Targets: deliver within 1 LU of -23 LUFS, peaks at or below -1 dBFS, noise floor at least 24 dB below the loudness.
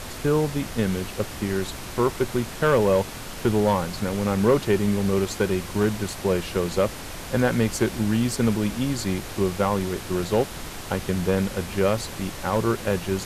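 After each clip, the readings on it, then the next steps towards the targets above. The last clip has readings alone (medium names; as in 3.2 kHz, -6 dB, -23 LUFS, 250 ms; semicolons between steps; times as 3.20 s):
clipped samples 0.4%; clipping level -12.0 dBFS; noise floor -36 dBFS; noise floor target -49 dBFS; loudness -24.5 LUFS; peak level -12.0 dBFS; loudness target -23.0 LUFS
-> clip repair -12 dBFS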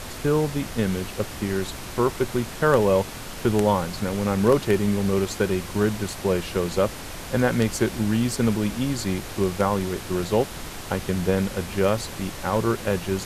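clipped samples 0.0%; noise floor -36 dBFS; noise floor target -48 dBFS
-> noise print and reduce 12 dB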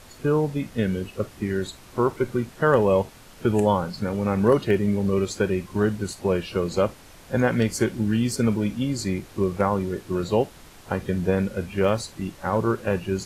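noise floor -47 dBFS; noise floor target -49 dBFS
-> noise print and reduce 6 dB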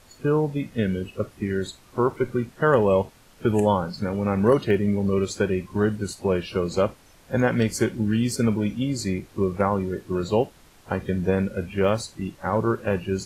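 noise floor -53 dBFS; loudness -24.5 LUFS; peak level -5.5 dBFS; loudness target -23.0 LUFS
-> trim +1.5 dB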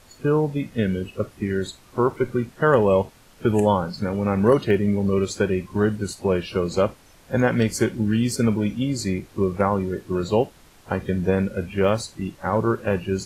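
loudness -23.0 LUFS; peak level -4.0 dBFS; noise floor -52 dBFS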